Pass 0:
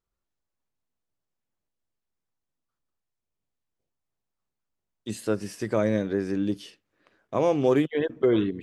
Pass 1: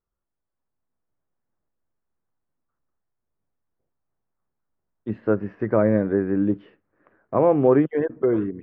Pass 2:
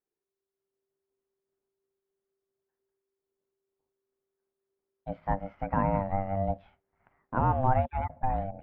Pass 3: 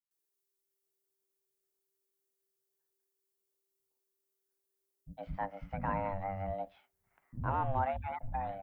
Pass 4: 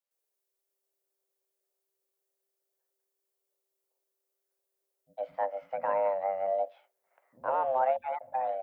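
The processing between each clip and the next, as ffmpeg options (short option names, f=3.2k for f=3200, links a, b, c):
-af "lowpass=f=1.7k:w=0.5412,lowpass=f=1.7k:w=1.3066,dynaudnorm=f=140:g=11:m=5.5dB"
-af "aeval=exprs='val(0)*sin(2*PI*390*n/s)':c=same,volume=-5dB"
-filter_complex "[0:a]crystalizer=i=5.5:c=0,acrossover=split=220[a][b];[b]adelay=110[c];[a][c]amix=inputs=2:normalize=0,volume=-8dB"
-af "highpass=f=550:t=q:w=4.9"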